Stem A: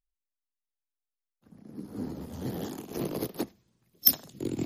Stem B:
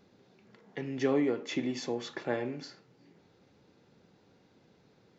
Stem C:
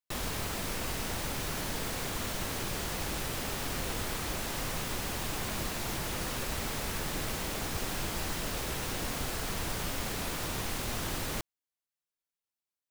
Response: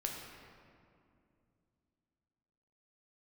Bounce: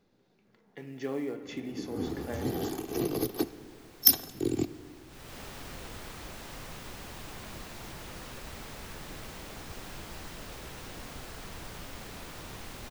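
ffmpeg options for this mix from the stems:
-filter_complex "[0:a]aecho=1:1:2.6:0.52,acrossover=split=380|3000[s0][s1][s2];[s1]acompressor=threshold=0.0141:ratio=6[s3];[s0][s3][s2]amix=inputs=3:normalize=0,volume=1.12,asplit=2[s4][s5];[s5]volume=0.224[s6];[1:a]acrusher=bits=7:mode=log:mix=0:aa=0.000001,volume=0.316,asplit=2[s7][s8];[s8]volume=0.501[s9];[2:a]equalizer=f=12000:t=o:w=1.5:g=-4.5,adelay=1950,volume=0.398,afade=t=in:st=5.07:d=0.32:silence=0.266073[s10];[3:a]atrim=start_sample=2205[s11];[s6][s9]amix=inputs=2:normalize=0[s12];[s12][s11]afir=irnorm=-1:irlink=0[s13];[s4][s7][s10][s13]amix=inputs=4:normalize=0"

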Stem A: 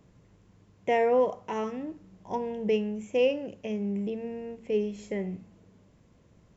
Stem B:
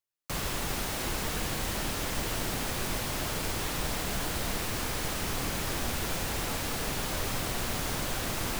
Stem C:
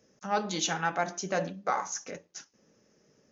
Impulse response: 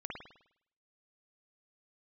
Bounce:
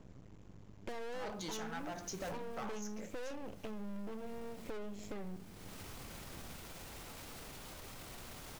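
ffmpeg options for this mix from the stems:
-filter_complex "[0:a]lowshelf=f=400:g=5.5,aeval=exprs='max(val(0),0)':c=same,volume=1.33,asplit=2[s0][s1];[1:a]bandreject=f=1700:w=23,alimiter=level_in=1.88:limit=0.0631:level=0:latency=1:release=16,volume=0.531,adelay=600,volume=0.266[s2];[2:a]aeval=exprs='clip(val(0),-1,0.0282)':c=same,adelay=900,volume=0.794[s3];[s1]apad=whole_len=405668[s4];[s2][s4]sidechaincompress=threshold=0.00631:ratio=6:attack=24:release=400[s5];[s0][s3]amix=inputs=2:normalize=0,asoftclip=type=tanh:threshold=0.0447,acompressor=threshold=0.00891:ratio=4,volume=1[s6];[s5][s6]amix=inputs=2:normalize=0"

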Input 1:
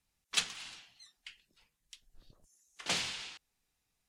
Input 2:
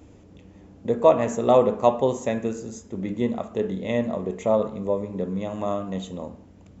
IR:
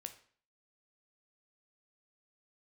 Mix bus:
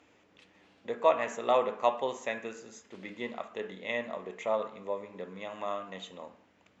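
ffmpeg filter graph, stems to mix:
-filter_complex "[0:a]acompressor=threshold=0.01:ratio=6,adelay=50,volume=0.126[s0];[1:a]volume=1.19[s1];[s0][s1]amix=inputs=2:normalize=0,bandpass=f=2100:t=q:w=1:csg=0"

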